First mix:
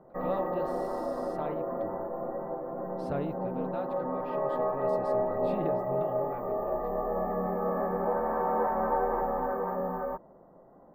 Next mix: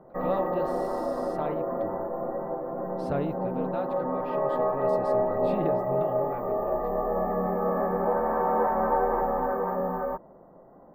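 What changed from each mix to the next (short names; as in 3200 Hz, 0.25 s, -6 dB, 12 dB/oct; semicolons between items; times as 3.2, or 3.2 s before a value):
speech +4.0 dB; background +3.5 dB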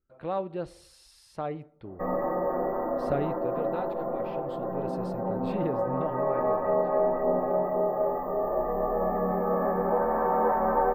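background: entry +1.85 s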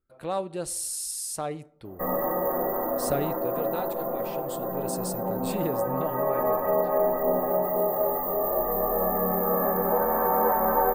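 master: remove air absorption 350 m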